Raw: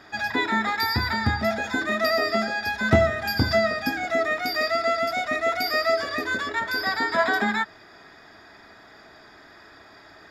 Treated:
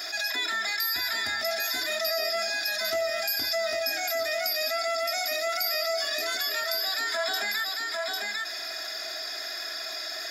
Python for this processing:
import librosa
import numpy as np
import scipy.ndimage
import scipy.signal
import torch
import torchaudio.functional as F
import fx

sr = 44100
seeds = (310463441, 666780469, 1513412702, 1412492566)

p1 = np.diff(x, prepend=0.0)
p2 = p1 + 0.77 * np.pad(p1, (int(2.9 * sr / 1000.0), 0))[:len(p1)]
p3 = 10.0 ** (-29.0 / 20.0) * np.tanh(p2 / 10.0 ** (-29.0 / 20.0))
p4 = p2 + F.gain(torch.from_numpy(p3), -8.0).numpy()
p5 = fx.graphic_eq_31(p4, sr, hz=(630, 1000, 5000), db=(9, -7, 8))
p6 = p5 + fx.echo_single(p5, sr, ms=799, db=-8.5, dry=0)
p7 = fx.env_flatten(p6, sr, amount_pct=70)
y = F.gain(torch.from_numpy(p7), -3.5).numpy()